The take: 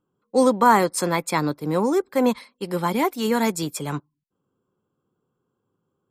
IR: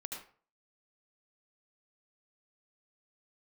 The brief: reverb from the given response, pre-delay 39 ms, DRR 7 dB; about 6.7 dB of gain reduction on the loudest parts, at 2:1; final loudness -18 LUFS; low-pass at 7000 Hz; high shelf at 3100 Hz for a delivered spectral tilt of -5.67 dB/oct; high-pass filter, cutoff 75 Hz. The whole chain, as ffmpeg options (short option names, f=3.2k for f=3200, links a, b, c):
-filter_complex "[0:a]highpass=75,lowpass=7k,highshelf=f=3.1k:g=-8.5,acompressor=threshold=-23dB:ratio=2,asplit=2[a][b];[1:a]atrim=start_sample=2205,adelay=39[c];[b][c]afir=irnorm=-1:irlink=0,volume=-5.5dB[d];[a][d]amix=inputs=2:normalize=0,volume=8dB"